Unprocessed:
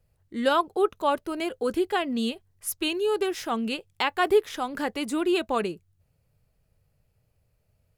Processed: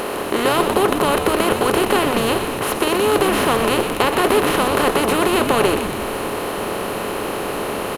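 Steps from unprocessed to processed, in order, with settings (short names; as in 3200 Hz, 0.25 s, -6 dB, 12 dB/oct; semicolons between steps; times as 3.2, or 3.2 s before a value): per-bin compression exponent 0.2; on a send: frequency-shifting echo 0.123 s, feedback 59%, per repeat -110 Hz, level -8 dB; on the sum: gain -1 dB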